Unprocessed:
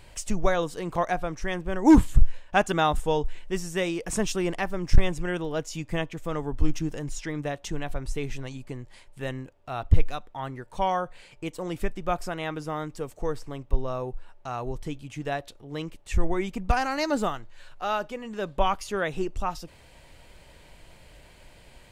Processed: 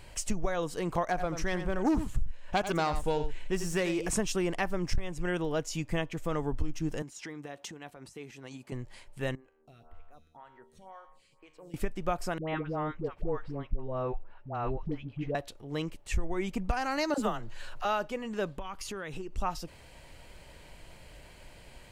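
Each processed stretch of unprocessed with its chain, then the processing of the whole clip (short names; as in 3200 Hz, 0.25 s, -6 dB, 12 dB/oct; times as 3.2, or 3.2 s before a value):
1.09–4.09 self-modulated delay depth 0.14 ms + echo 86 ms -11.5 dB + upward compressor, threshold -27 dBFS
7.02–8.72 compressor 10:1, threshold -36 dBFS + HPF 190 Hz + notch 600 Hz, Q 13
9.35–11.74 compressor 4:1, threshold -33 dBFS + resonator 78 Hz, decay 1.6 s, mix 80% + photocell phaser 2 Hz
12.38–15.35 air absorption 360 m + dispersion highs, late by 96 ms, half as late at 650 Hz
17.14–17.85 bell 2200 Hz -3 dB 0.27 oct + upward compressor, threshold -30 dBFS + dispersion lows, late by 44 ms, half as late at 590 Hz
18.55–19.38 bell 660 Hz -7 dB 0.47 oct + compressor 12:1, threshold -34 dBFS
whole clip: notch 3600 Hz, Q 23; compressor 6:1, threshold -25 dBFS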